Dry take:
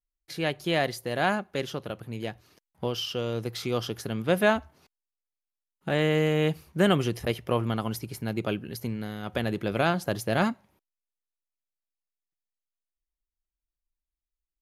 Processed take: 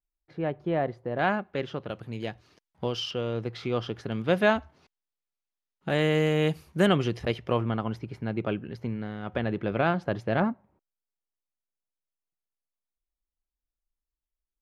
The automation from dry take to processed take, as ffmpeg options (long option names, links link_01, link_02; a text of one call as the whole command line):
ffmpeg -i in.wav -af "asetnsamples=nb_out_samples=441:pad=0,asendcmd='1.19 lowpass f 2700;1.89 lowpass f 5900;3.11 lowpass f 3000;4.12 lowpass f 5200;5.89 lowpass f 11000;6.86 lowpass f 4700;7.63 lowpass f 2400;10.4 lowpass f 1100',lowpass=1100" out.wav